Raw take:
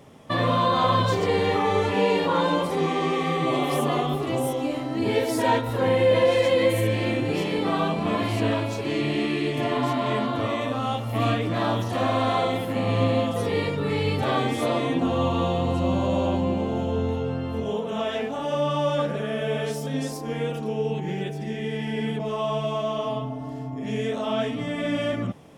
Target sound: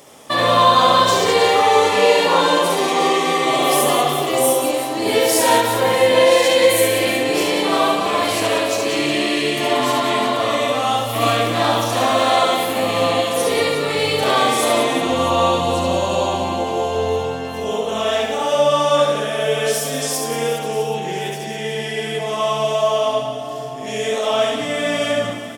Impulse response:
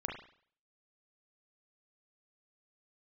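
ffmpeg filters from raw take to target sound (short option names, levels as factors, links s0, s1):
-filter_complex "[0:a]bass=f=250:g=-15,treble=f=4000:g=11,aecho=1:1:70|182|361.2|647.9|1107:0.631|0.398|0.251|0.158|0.1,asplit=2[s0][s1];[1:a]atrim=start_sample=2205[s2];[s1][s2]afir=irnorm=-1:irlink=0,volume=0.596[s3];[s0][s3]amix=inputs=2:normalize=0,volume=1.33"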